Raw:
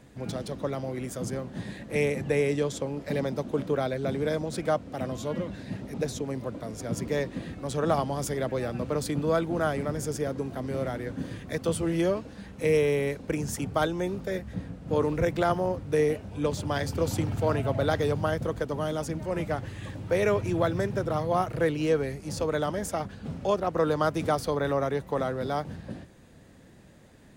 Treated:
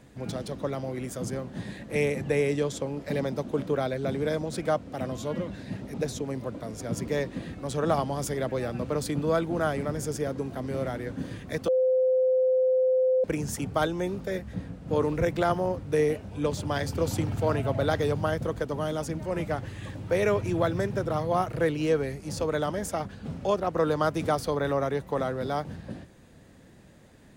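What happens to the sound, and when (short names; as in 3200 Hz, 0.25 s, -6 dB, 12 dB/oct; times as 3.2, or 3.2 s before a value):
11.68–13.24 bleep 515 Hz -19.5 dBFS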